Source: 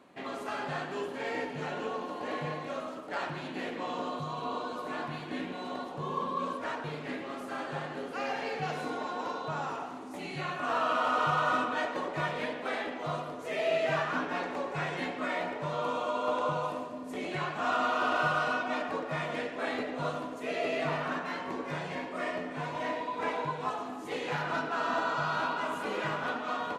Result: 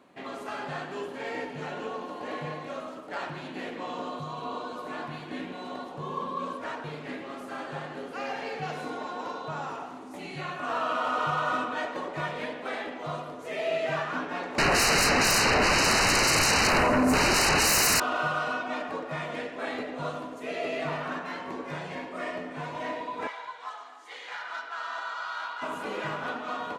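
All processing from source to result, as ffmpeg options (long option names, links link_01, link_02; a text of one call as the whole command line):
ffmpeg -i in.wav -filter_complex "[0:a]asettb=1/sr,asplit=3[link_01][link_02][link_03];[link_01]atrim=end=14.584[link_04];[link_02]atrim=start=14.58:end=18,asetpts=PTS-STARTPTS,afade=type=in:duration=0.004:curve=qsin,afade=type=out:start_time=3.416:duration=0.004:curve=qsin,aeval=exprs='0.112*sin(PI/2*10*val(0)/0.112)':channel_layout=same,asuperstop=centerf=3400:order=8:qfactor=3.9[link_05];[link_03]atrim=start=17.996[link_06];[link_04][link_05]acrossfade=duration=0.004:curve1=hsin:curve2=qsin[link_07];[link_07][link_06]acrossfade=duration=0.004:curve1=qsin:curve2=hsin,asettb=1/sr,asplit=3[link_08][link_09][link_10];[link_08]atrim=end=23.274[link_11];[link_09]atrim=start=23.27:end=25.62,asetpts=PTS-STARTPTS,afade=type=in:duration=0.004:curve=qsin,afade=type=out:start_time=2.346:duration=0.004:curve=qsin,bandreject=frequency=2600:width=8.4,adynamicsmooth=sensitivity=6.5:basefreq=7300,highpass=1200[link_12];[link_10]atrim=start=25.616[link_13];[link_11][link_12]acrossfade=duration=0.004:curve1=hsin:curve2=qsin[link_14];[link_14][link_13]acrossfade=duration=0.004:curve1=qsin:curve2=hsin" out.wav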